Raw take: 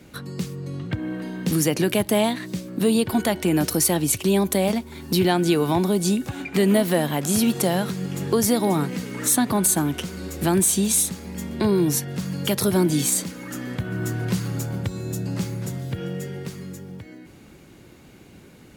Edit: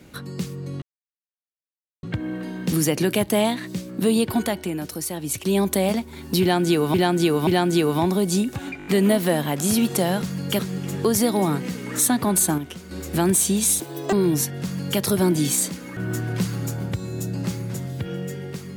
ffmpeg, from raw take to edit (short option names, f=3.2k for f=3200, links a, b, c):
-filter_complex "[0:a]asplit=17[a][b][c][d][e][f][g][h][i][j][k][l][m][n][o][p][q];[a]atrim=end=0.82,asetpts=PTS-STARTPTS,afade=t=out:st=0.816:d=0.004:c=hsin,apad=pad_dur=1.21[r];[b]atrim=start=0.82:end=3.57,asetpts=PTS-STARTPTS,afade=t=in:d=0.004:c=hsin,afade=t=out:st=2.31:d=0.44:silence=0.354813[s];[c]atrim=start=3.57:end=3.97,asetpts=PTS-STARTPTS,volume=-9dB[t];[d]atrim=start=3.97:end=5.732,asetpts=PTS-STARTPTS,afade=t=in:d=0.44:silence=0.354813[u];[e]atrim=start=5.198:end=5.732[v];[f]atrim=start=5.198:end=6.532[w];[g]atrim=start=6.508:end=6.532[x];[h]atrim=start=6.508:end=6.532[y];[i]atrim=start=6.508:end=6.532[z];[j]atrim=start=6.508:end=7.872[aa];[k]atrim=start=12.168:end=12.542[ab];[l]atrim=start=7.868:end=9.862[ac];[m]atrim=start=9.858:end=10.192,asetpts=PTS-STARTPTS,volume=-7dB[ad];[n]atrim=start=10.188:end=11.084[ae];[o]atrim=start=11.08:end=11.67,asetpts=PTS-STARTPTS,asetrate=79380,aresample=44100[af];[p]atrim=start=11.666:end=13.512[ag];[q]atrim=start=13.888[ah];[r][s][t][u]concat=n=4:v=0:a=1[ai];[ai][v]acrossfade=d=0.004:c1=hsin:c2=hsin[aj];[aj][w]acrossfade=d=0.004:c1=hsin:c2=hsin[ak];[ak][x]acrossfade=d=0.004:c1=hsin:c2=hsin[al];[al][y]acrossfade=d=0.004:c1=hsin:c2=hsin[am];[am][z]acrossfade=d=0.004:c1=hsin:c2=hsin[an];[an][aa]acrossfade=d=0.004:c1=hsin:c2=hsin[ao];[ao][ab]acrossfade=d=0.004:c1=hsin:c2=hsin[ap];[ap][ac]acrossfade=d=0.004:c1=hsin:c2=hsin[aq];[aq][ad]acrossfade=d=0.004:c1=hsin:c2=hsin[ar];[ar][ae]acrossfade=d=0.004:c1=hsin:c2=hsin[as];[as][af]acrossfade=d=0.004:c1=hsin:c2=hsin[at];[at][ag]acrossfade=d=0.004:c1=hsin:c2=hsin[au];[au][ah]acrossfade=d=0.004:c1=hsin:c2=hsin"